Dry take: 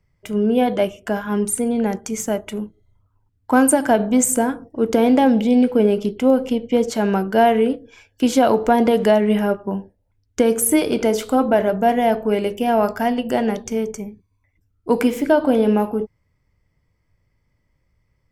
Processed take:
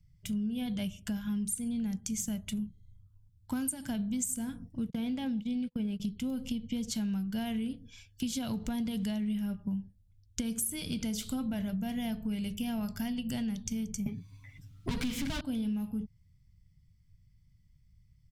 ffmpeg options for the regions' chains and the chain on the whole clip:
-filter_complex "[0:a]asettb=1/sr,asplit=3[s0][s1][s2];[s0]atrim=end=4.904[s3];[s1]atrim=start=4.9:end=6,asetpts=PTS-STARTPTS,afade=t=in:d=0.004:c=qsin,afade=t=out:st=1.096:d=0.004:c=qsin,agate=range=0.0178:threshold=0.1:ratio=16:release=100:detection=peak,bass=f=250:g=-4,treble=f=4000:g=-8[s4];[s2]atrim=start=5.996[s5];[s3][s4]acrossfade=d=0.004:c1=hsin:c2=qsin[s6];[s6][s5]acrossfade=d=0.004:c1=qsin:c2=hsin,asettb=1/sr,asplit=3[s7][s8][s9];[s7]atrim=end=14.064[s10];[s8]atrim=start=14.06:end=15.41,asetpts=PTS-STARTPTS,afade=t=in:d=0.004:c=qsin,afade=t=out:st=1.346:d=0.004:c=qsin,aecho=1:1:7.4:0.99,atrim=end_sample=59535,asplit=2[s11][s12];[s12]highpass=f=720:p=1,volume=44.7,asoftclip=type=tanh:threshold=0.794[s13];[s11][s13]amix=inputs=2:normalize=0,lowpass=f=1600:p=1,volume=0.501[s14];[s9]atrim=start=15.406[s15];[s10][s14]acrossfade=d=0.004:c1=hsin:c2=qsin[s16];[s16][s15]acrossfade=d=0.004:c1=qsin:c2=hsin,firequalizer=gain_entry='entry(170,0);entry(370,-28);entry(3400,-5)':delay=0.05:min_phase=1,acompressor=threshold=0.0178:ratio=6,volume=1.5"

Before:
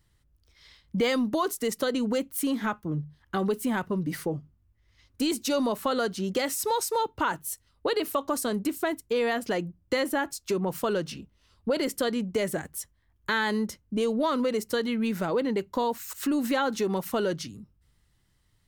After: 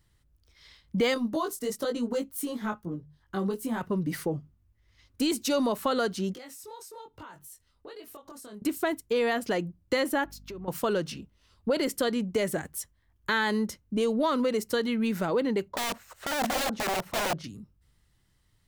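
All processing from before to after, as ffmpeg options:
-filter_complex "[0:a]asettb=1/sr,asplit=3[s0][s1][s2];[s0]atrim=end=1.144[s3];[s1]atrim=start=1.14:end=3.81,asetpts=PTS-STARTPTS,afade=t=in:d=0.004:c=qsin,afade=t=out:st=2.666:d=0.004:c=qsin,equalizer=f=2300:w=1.2:g=-5,flanger=delay=17:depth=3.3:speed=1.1[s4];[s2]atrim=start=3.806[s5];[s3][s4]acrossfade=d=0.004:c1=hsin:c2=qsin[s6];[s6][s5]acrossfade=d=0.004:c1=qsin:c2=hsin,asettb=1/sr,asplit=3[s7][s8][s9];[s7]atrim=end=6.344[s10];[s8]atrim=start=6.34:end=8.62,asetpts=PTS-STARTPTS,afade=t=in:d=0.004:c=qsin,afade=t=out:st=2.276:d=0.004:c=qsin,acompressor=threshold=0.00794:ratio=4:attack=3.2:release=140:knee=1:detection=peak,flanger=delay=20:depth=4.2:speed=1.1[s11];[s9]atrim=start=8.616[s12];[s10][s11]acrossfade=d=0.004:c1=hsin:c2=qsin[s13];[s13][s12]acrossfade=d=0.004:c1=qsin:c2=hsin,asettb=1/sr,asplit=3[s14][s15][s16];[s14]atrim=end=10.244[s17];[s15]atrim=start=10.24:end=10.68,asetpts=PTS-STARTPTS,afade=t=in:d=0.004:c=qsin,afade=t=out:st=0.436:d=0.004:c=qsin,equalizer=f=8500:t=o:w=0.96:g=-13.5,acompressor=threshold=0.01:ratio=4:attack=3.2:release=140:knee=1:detection=peak,aeval=exprs='val(0)+0.00316*(sin(2*PI*50*n/s)+sin(2*PI*2*50*n/s)/2+sin(2*PI*3*50*n/s)/3+sin(2*PI*4*50*n/s)/4+sin(2*PI*5*50*n/s)/5)':c=same[s18];[s16]atrim=start=10.676[s19];[s17][s18]acrossfade=d=0.004:c1=hsin:c2=qsin[s20];[s20][s19]acrossfade=d=0.004:c1=qsin:c2=hsin,asettb=1/sr,asplit=3[s21][s22][s23];[s21]atrim=end=15.684[s24];[s22]atrim=start=15.68:end=17.44,asetpts=PTS-STARTPTS,afade=t=in:d=0.004:c=qsin,afade=t=out:st=1.756:d=0.004:c=qsin,lowpass=f=1200:p=1,aeval=exprs='(mod(21.1*val(0)+1,2)-1)/21.1':c=same,equalizer=f=620:w=1.7:g=9.5[s25];[s23]atrim=start=17.436[s26];[s24][s25]acrossfade=d=0.004:c1=hsin:c2=qsin[s27];[s27][s26]acrossfade=d=0.004:c1=qsin:c2=hsin"

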